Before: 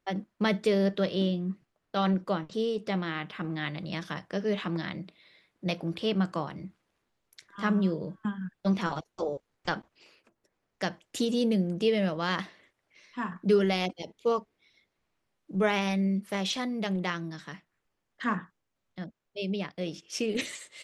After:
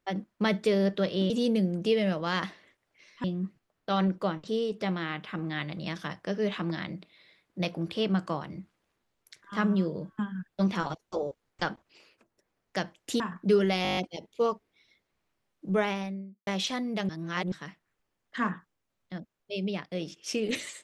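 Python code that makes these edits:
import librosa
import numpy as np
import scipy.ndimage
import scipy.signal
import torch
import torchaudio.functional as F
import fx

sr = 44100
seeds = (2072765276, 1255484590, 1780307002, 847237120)

y = fx.studio_fade_out(x, sr, start_s=15.52, length_s=0.81)
y = fx.edit(y, sr, fx.move(start_s=11.26, length_s=1.94, to_s=1.3),
    fx.stutter(start_s=13.83, slice_s=0.02, count=8),
    fx.reverse_span(start_s=16.95, length_s=0.43), tone=tone)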